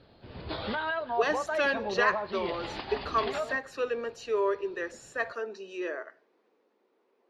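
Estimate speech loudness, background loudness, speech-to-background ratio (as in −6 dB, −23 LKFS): −32.0 LKFS, −34.5 LKFS, 2.5 dB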